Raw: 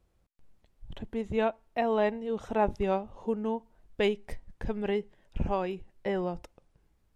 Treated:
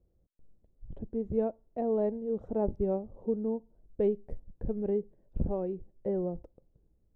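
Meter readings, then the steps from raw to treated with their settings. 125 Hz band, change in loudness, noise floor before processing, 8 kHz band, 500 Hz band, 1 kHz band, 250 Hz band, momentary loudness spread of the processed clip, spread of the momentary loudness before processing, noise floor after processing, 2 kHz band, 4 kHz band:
0.0 dB, -1.5 dB, -70 dBFS, no reading, -1.0 dB, -11.0 dB, 0.0 dB, 12 LU, 14 LU, -71 dBFS, under -20 dB, under -25 dB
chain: FFT filter 520 Hz 0 dB, 890 Hz -14 dB, 3 kHz -30 dB

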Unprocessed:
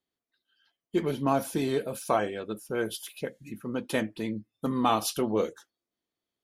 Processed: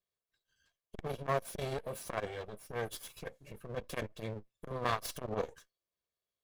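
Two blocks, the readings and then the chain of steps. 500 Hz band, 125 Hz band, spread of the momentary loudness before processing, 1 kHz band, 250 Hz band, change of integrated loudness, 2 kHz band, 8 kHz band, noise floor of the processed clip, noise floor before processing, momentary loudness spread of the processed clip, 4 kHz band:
-9.0 dB, -5.0 dB, 10 LU, -9.0 dB, -16.5 dB, -9.5 dB, -5.5 dB, -9.0 dB, under -85 dBFS, under -85 dBFS, 12 LU, -8.5 dB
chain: comb filter that takes the minimum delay 1.8 ms; transformer saturation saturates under 570 Hz; trim -4.5 dB

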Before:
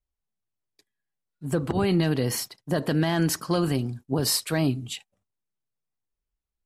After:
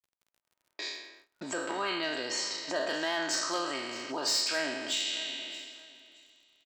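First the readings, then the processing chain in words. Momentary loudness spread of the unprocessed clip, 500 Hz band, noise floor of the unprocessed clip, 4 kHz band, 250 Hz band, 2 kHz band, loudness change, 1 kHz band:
8 LU, -7.0 dB, under -85 dBFS, +2.0 dB, -14.0 dB, +2.0 dB, -6.0 dB, -1.5 dB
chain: spectral sustain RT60 1.00 s; recorder AGC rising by 44 dB/s; gate -47 dBFS, range -16 dB; elliptic low-pass 7.6 kHz, stop band 40 dB; level-controlled noise filter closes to 1.5 kHz, open at -20 dBFS; high-pass 640 Hz 12 dB/octave; comb 3.2 ms, depth 45%; in parallel at +1 dB: compression 10:1, threshold -42 dBFS, peak gain reduction 21.5 dB; on the sum: hard clipper -18 dBFS, distortion -23 dB; crackle 48 per s -49 dBFS; on a send: feedback delay 622 ms, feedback 23%, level -16.5 dB; on the sum: trim -5 dB

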